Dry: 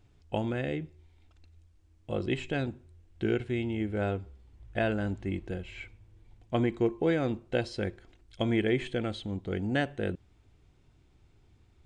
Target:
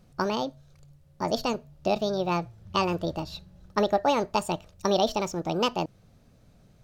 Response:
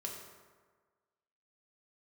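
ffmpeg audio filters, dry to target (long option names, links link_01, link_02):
-af "asetrate=76440,aresample=44100,volume=4dB"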